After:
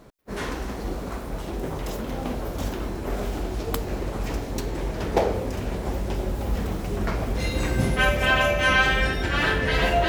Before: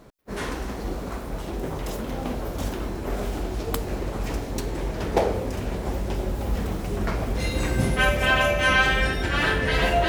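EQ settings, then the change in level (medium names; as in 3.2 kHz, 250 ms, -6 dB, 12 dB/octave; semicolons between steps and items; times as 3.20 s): dynamic bell 9.4 kHz, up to -4 dB, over -53 dBFS, Q 2.7; 0.0 dB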